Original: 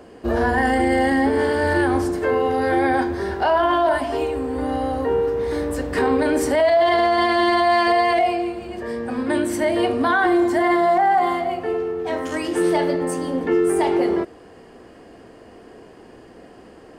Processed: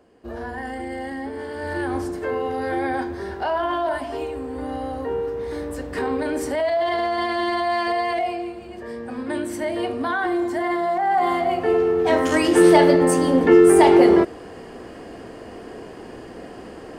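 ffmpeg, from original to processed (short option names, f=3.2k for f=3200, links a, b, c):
-af "volume=6.5dB,afade=t=in:st=1.48:d=0.49:silence=0.446684,afade=t=in:st=11:d=0.98:silence=0.251189"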